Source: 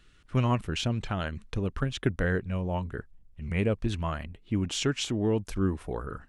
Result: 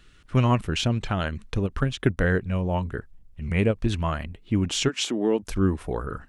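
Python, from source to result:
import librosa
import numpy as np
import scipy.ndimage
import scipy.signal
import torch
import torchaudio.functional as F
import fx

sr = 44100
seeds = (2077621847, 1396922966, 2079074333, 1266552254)

y = fx.highpass(x, sr, hz=220.0, slope=24, at=(4.88, 5.42), fade=0.02)
y = fx.end_taper(y, sr, db_per_s=450.0)
y = F.gain(torch.from_numpy(y), 5.0).numpy()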